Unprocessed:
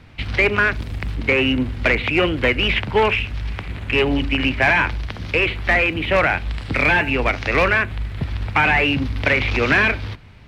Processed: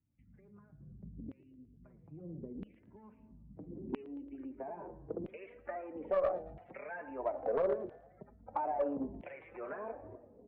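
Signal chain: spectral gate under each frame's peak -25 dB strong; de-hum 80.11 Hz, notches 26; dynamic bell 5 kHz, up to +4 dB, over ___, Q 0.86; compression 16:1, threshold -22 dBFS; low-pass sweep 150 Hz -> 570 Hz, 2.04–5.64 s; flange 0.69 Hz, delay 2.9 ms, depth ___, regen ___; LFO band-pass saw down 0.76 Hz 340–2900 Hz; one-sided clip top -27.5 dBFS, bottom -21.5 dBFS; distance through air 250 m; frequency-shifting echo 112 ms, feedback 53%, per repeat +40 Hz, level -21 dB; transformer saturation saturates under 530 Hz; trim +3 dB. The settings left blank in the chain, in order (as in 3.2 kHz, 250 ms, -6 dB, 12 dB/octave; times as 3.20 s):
-32 dBFS, 3.5 ms, +10%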